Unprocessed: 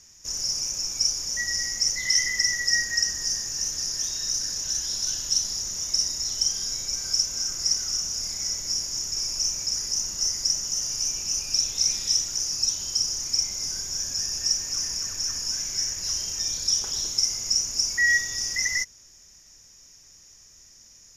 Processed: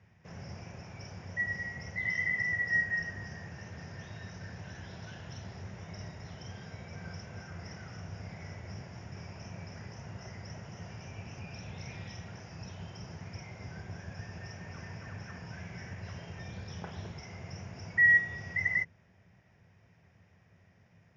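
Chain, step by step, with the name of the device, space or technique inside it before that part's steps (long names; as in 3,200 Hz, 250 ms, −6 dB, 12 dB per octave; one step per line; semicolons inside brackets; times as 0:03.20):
sub-octave bass pedal (sub-octave generator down 1 octave, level +3 dB; loudspeaker in its box 82–2,300 Hz, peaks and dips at 98 Hz +9 dB, 170 Hz +7 dB, 290 Hz −8 dB, 690 Hz +5 dB, 1,200 Hz −5 dB)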